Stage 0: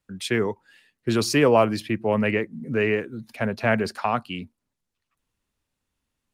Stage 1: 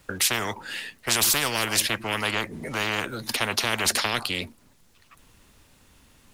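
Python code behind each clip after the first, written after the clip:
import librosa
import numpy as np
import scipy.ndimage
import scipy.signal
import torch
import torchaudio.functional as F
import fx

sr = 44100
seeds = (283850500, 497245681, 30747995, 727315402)

y = fx.spectral_comp(x, sr, ratio=10.0)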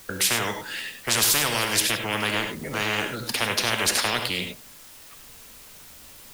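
y = fx.quant_dither(x, sr, seeds[0], bits=8, dither='triangular')
y = fx.rev_gated(y, sr, seeds[1], gate_ms=120, shape='rising', drr_db=5.5)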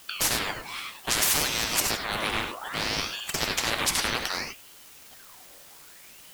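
y = fx.ring_lfo(x, sr, carrier_hz=1800.0, swing_pct=70, hz=0.63)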